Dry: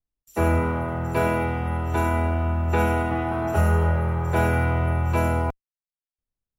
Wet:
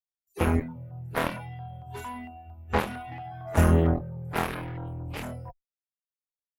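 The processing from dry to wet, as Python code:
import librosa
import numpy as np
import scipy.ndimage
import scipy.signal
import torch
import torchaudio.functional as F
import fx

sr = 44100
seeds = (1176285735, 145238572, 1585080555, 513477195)

y = fx.noise_reduce_blind(x, sr, reduce_db=26)
y = fx.filter_lfo_notch(y, sr, shape='saw_down', hz=4.4, low_hz=910.0, high_hz=2200.0, q=0.82)
y = fx.cheby_harmonics(y, sr, harmonics=(7,), levels_db=(-12,), full_scale_db=-9.5)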